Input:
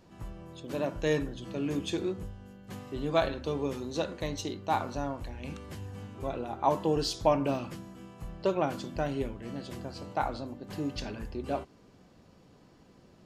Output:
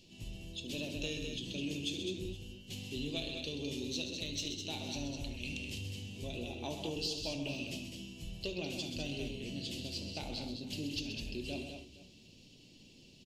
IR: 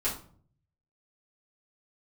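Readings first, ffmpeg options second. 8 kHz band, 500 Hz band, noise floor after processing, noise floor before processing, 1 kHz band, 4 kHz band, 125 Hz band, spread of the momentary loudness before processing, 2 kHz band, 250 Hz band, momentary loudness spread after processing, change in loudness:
+1.0 dB, -12.5 dB, -59 dBFS, -59 dBFS, -19.5 dB, +3.5 dB, -5.5 dB, 16 LU, -2.5 dB, -6.0 dB, 11 LU, -7.0 dB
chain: -filter_complex "[0:a]firequalizer=gain_entry='entry(280,0);entry(1300,-24);entry(2700,14);entry(11000,5)':delay=0.05:min_phase=1,acompressor=threshold=-33dB:ratio=4,asoftclip=type=tanh:threshold=-21.5dB,aecho=1:1:71|130|206|466:0.211|0.355|0.501|0.112,asplit=2[a][b];[1:a]atrim=start_sample=2205[c];[b][c]afir=irnorm=-1:irlink=0,volume=-14.5dB[d];[a][d]amix=inputs=2:normalize=0,volume=-5dB"

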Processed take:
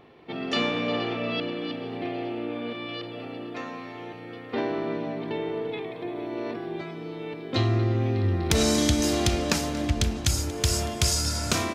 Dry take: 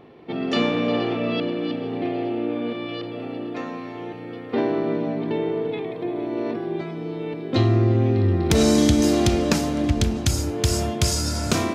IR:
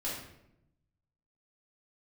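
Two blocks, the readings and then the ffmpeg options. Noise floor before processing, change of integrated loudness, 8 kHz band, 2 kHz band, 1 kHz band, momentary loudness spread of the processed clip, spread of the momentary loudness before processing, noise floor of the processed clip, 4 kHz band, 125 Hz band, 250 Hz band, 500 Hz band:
-35 dBFS, -4.5 dB, 0.0 dB, -1.0 dB, -3.0 dB, 13 LU, 13 LU, -40 dBFS, 0.0 dB, -4.5 dB, -7.0 dB, -5.5 dB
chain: -filter_complex "[0:a]equalizer=f=250:w=0.36:g=-7,asplit=2[a][b];[b]aecho=0:1:233:0.112[c];[a][c]amix=inputs=2:normalize=0"

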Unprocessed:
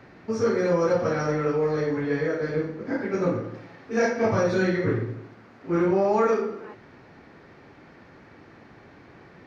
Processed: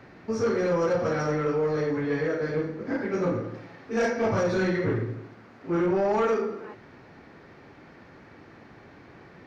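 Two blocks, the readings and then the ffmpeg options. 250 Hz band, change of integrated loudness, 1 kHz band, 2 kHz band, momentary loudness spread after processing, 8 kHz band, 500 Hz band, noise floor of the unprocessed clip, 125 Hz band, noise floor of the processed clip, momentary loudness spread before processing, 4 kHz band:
-2.0 dB, -2.0 dB, -2.0 dB, -1.5 dB, 10 LU, n/a, -2.0 dB, -51 dBFS, -1.5 dB, -51 dBFS, 12 LU, -0.5 dB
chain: -af "asoftclip=type=tanh:threshold=-18dB"

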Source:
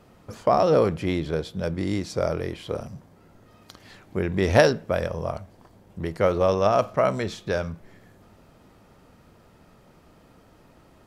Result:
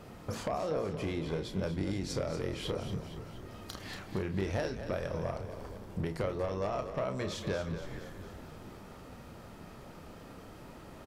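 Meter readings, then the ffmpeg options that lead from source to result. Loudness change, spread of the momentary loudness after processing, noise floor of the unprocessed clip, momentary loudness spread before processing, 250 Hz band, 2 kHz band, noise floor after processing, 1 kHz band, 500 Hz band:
-12.5 dB, 16 LU, -55 dBFS, 15 LU, -8.5 dB, -11.5 dB, -50 dBFS, -13.5 dB, -12.5 dB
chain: -filter_complex "[0:a]acompressor=threshold=-34dB:ratio=16,aeval=exprs='0.075*sin(PI/2*1.58*val(0)/0.075)':c=same,asplit=2[a][b];[b]adelay=31,volume=-8dB[c];[a][c]amix=inputs=2:normalize=0,asplit=2[d][e];[e]asplit=7[f][g][h][i][j][k][l];[f]adelay=234,afreqshift=-37,volume=-10dB[m];[g]adelay=468,afreqshift=-74,volume=-14.6dB[n];[h]adelay=702,afreqshift=-111,volume=-19.2dB[o];[i]adelay=936,afreqshift=-148,volume=-23.7dB[p];[j]adelay=1170,afreqshift=-185,volume=-28.3dB[q];[k]adelay=1404,afreqshift=-222,volume=-32.9dB[r];[l]adelay=1638,afreqshift=-259,volume=-37.5dB[s];[m][n][o][p][q][r][s]amix=inputs=7:normalize=0[t];[d][t]amix=inputs=2:normalize=0,volume=-4dB"

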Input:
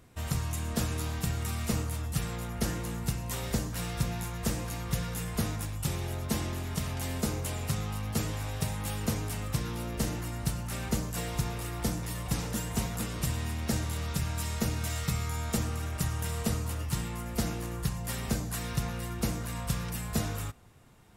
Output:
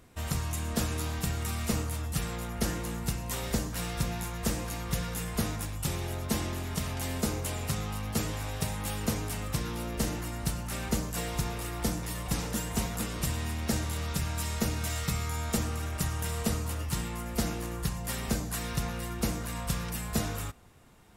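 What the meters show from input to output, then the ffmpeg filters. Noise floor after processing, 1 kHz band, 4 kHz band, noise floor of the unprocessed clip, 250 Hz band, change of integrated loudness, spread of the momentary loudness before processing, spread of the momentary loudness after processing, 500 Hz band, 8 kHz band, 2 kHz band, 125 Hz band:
-37 dBFS, +1.5 dB, +1.5 dB, -38 dBFS, +0.5 dB, +0.5 dB, 2 LU, 3 LU, +1.5 dB, +1.5 dB, +1.5 dB, -1.0 dB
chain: -af "equalizer=f=120:t=o:w=0.77:g=-4.5,volume=1.5dB"

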